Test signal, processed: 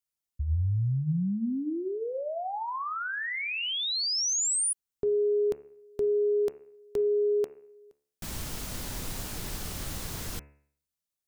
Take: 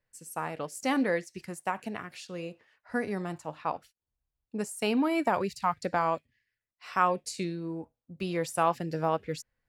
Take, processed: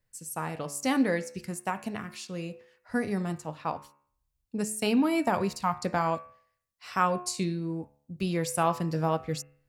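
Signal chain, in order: tone controls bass +7 dB, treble +6 dB; de-hum 71.67 Hz, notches 39

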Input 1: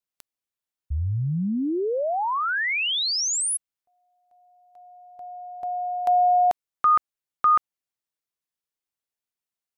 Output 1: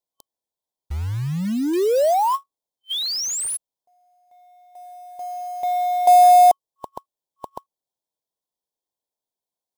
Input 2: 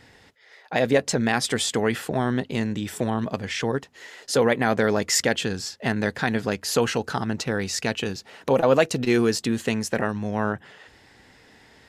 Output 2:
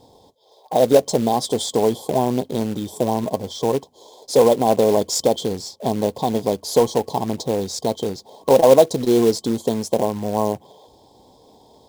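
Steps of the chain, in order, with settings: FFT band-reject 1.1–3.1 kHz; peaking EQ 610 Hz +9 dB 2.2 oct; short-mantissa float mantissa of 2-bit; trim -1 dB

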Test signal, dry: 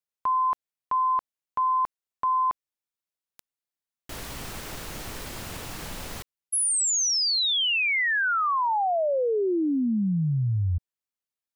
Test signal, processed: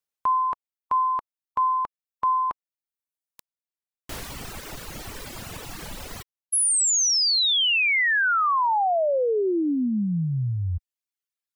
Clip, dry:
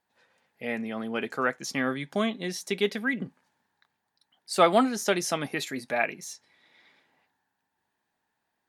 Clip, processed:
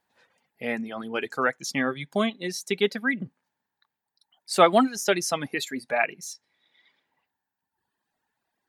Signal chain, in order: reverb removal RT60 1.8 s; trim +3 dB

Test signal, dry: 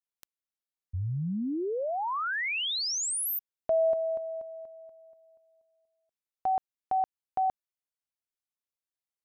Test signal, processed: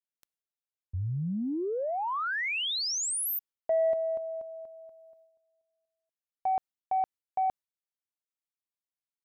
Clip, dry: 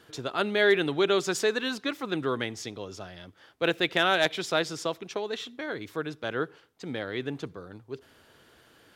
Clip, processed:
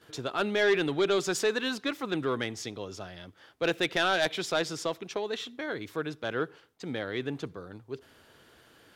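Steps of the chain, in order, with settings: gate with hold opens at -49 dBFS, closes at -57 dBFS, hold 71 ms, range -9 dB; saturation -17.5 dBFS

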